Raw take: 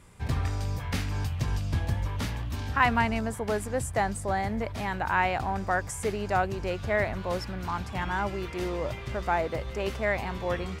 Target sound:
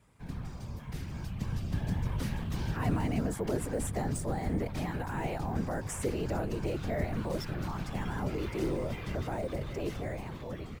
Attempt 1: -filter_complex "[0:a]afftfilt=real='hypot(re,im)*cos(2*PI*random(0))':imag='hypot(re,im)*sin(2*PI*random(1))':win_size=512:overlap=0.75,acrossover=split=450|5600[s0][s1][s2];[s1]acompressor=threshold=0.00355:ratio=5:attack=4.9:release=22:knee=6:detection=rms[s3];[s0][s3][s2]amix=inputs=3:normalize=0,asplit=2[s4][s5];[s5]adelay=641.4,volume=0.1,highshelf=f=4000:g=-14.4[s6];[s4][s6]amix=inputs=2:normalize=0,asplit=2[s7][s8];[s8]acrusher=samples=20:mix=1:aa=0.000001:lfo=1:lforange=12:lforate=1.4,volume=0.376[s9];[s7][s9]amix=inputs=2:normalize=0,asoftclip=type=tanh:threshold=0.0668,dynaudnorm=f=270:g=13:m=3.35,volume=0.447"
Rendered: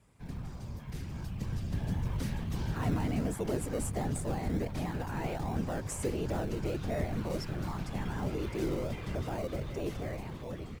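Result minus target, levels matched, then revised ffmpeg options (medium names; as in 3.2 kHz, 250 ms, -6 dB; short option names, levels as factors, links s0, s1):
saturation: distortion +13 dB; decimation with a swept rate: distortion +9 dB
-filter_complex "[0:a]afftfilt=real='hypot(re,im)*cos(2*PI*random(0))':imag='hypot(re,im)*sin(2*PI*random(1))':win_size=512:overlap=0.75,acrossover=split=450|5600[s0][s1][s2];[s1]acompressor=threshold=0.00355:ratio=5:attack=4.9:release=22:knee=6:detection=rms[s3];[s0][s3][s2]amix=inputs=3:normalize=0,asplit=2[s4][s5];[s5]adelay=641.4,volume=0.1,highshelf=f=4000:g=-14.4[s6];[s4][s6]amix=inputs=2:normalize=0,asplit=2[s7][s8];[s8]acrusher=samples=4:mix=1:aa=0.000001:lfo=1:lforange=2.4:lforate=1.4,volume=0.376[s9];[s7][s9]amix=inputs=2:normalize=0,asoftclip=type=tanh:threshold=0.168,dynaudnorm=f=270:g=13:m=3.35,volume=0.447"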